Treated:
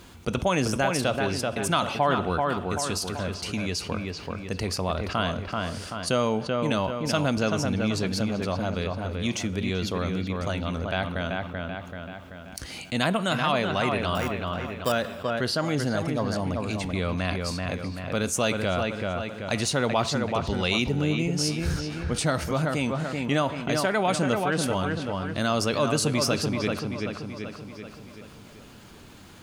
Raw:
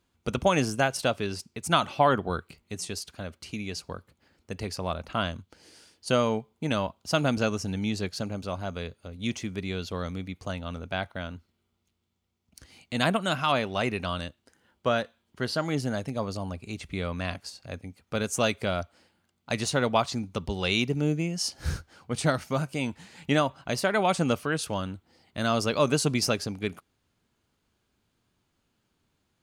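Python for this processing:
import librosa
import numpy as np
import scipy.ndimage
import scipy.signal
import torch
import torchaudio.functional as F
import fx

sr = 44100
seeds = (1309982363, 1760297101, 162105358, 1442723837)

p1 = fx.sample_hold(x, sr, seeds[0], rate_hz=4200.0, jitter_pct=0, at=(14.15, 14.92))
p2 = p1 + fx.echo_wet_lowpass(p1, sr, ms=384, feedback_pct=33, hz=3000.0, wet_db=-6.0, dry=0)
p3 = fx.rev_double_slope(p2, sr, seeds[1], early_s=0.55, late_s=3.7, knee_db=-17, drr_db=18.0)
p4 = fx.env_flatten(p3, sr, amount_pct=50)
y = p4 * librosa.db_to_amplitude(-3.0)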